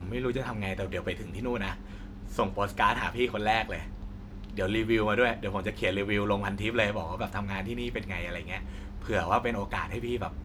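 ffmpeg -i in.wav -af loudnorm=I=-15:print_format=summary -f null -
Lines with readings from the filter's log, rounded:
Input Integrated:    -30.7 LUFS
Input True Peak:      -9.8 dBTP
Input LRA:             3.6 LU
Input Threshold:     -41.0 LUFS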